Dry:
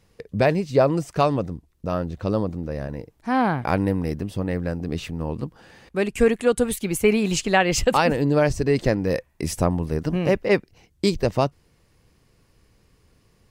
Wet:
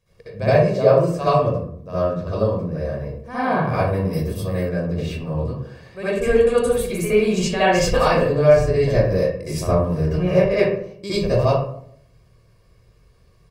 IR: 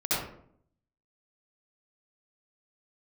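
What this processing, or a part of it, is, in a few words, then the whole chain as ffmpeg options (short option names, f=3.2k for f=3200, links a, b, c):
microphone above a desk: -filter_complex "[0:a]aecho=1:1:1.8:0.57[a];[1:a]atrim=start_sample=2205[b];[a][b]afir=irnorm=-1:irlink=0,asettb=1/sr,asplit=3[c][d][e];[c]atrim=end=4.134[f];[d]atrim=start=4.13:end=4.69,asetpts=PTS-STARTPTS,afade=t=in:d=0.004:c=qsin,afade=t=out:st=0.556:d=0.004:c=qsin,aemphasis=mode=production:type=50fm[g];[e]atrim=start=4.686[h];[f][g]acrossfade=d=0.004:c1=hsin:c2=qsin[i];[i][h]acrossfade=d=0.004:c1=qsin:c2=hsin,volume=-9.5dB"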